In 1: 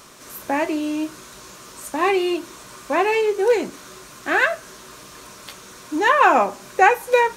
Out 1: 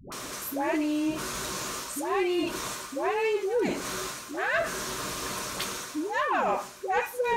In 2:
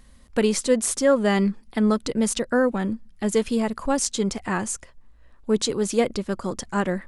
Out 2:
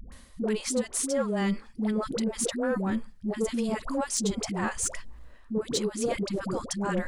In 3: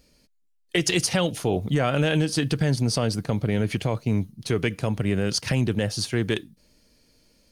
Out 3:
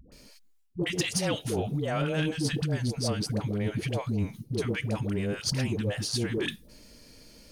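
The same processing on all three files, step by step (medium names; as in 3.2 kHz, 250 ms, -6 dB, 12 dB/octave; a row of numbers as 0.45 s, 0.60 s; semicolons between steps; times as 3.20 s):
reverse; compression 4:1, threshold -36 dBFS; reverse; phase dispersion highs, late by 121 ms, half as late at 510 Hz; saturation -25.5 dBFS; trim +8.5 dB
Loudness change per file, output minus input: -10.0 LU, -6.0 LU, -5.5 LU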